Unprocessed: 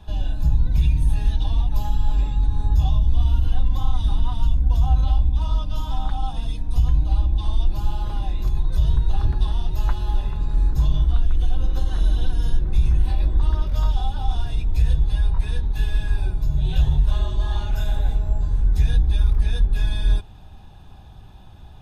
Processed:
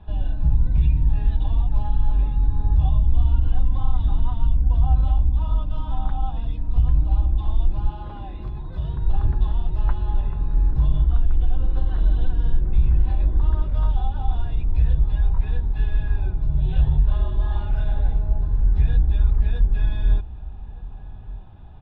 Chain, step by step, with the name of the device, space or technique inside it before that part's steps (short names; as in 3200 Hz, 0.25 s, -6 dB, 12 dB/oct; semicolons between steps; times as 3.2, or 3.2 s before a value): shout across a valley (air absorption 450 m; outdoor echo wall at 210 m, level -17 dB); 7.89–9.02 HPF 130 Hz 6 dB/oct